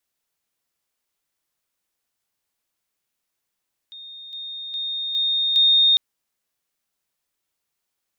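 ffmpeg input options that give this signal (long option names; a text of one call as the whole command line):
ffmpeg -f lavfi -i "aevalsrc='pow(10,(-36.5+6*floor(t/0.41))/20)*sin(2*PI*3680*t)':duration=2.05:sample_rate=44100" out.wav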